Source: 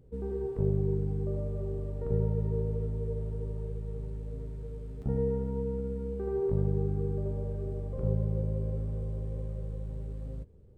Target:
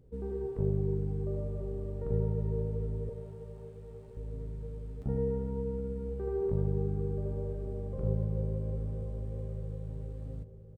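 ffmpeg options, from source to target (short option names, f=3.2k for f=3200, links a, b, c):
-filter_complex "[0:a]asettb=1/sr,asplit=3[a][b][c];[a]atrim=end=3.094[d];[b]atrim=start=3.09:end=4.17,asetpts=PTS-STARTPTS,afade=t=in:d=0.004:c=qsin,afade=t=out:st=1.076:d=0.004:c=qsin,highpass=f=480:w=0.5412,highpass=f=480:w=1.3066[e];[c]atrim=start=4.166[f];[d][e]acrossfade=d=0.004:c1=hsin:c2=qsin[g];[g][f]acrossfade=d=0.004:c1=qsin:c2=hsin,asplit=2[h][i];[i]adelay=1015,lowpass=f=1.6k:p=1,volume=-15dB,asplit=2[j][k];[k]adelay=1015,lowpass=f=1.6k:p=1,volume=0.46,asplit=2[l][m];[m]adelay=1015,lowpass=f=1.6k:p=1,volume=0.46,asplit=2[n][o];[o]adelay=1015,lowpass=f=1.6k:p=1,volume=0.46[p];[h][j][l][n][p]amix=inputs=5:normalize=0,volume=-2dB"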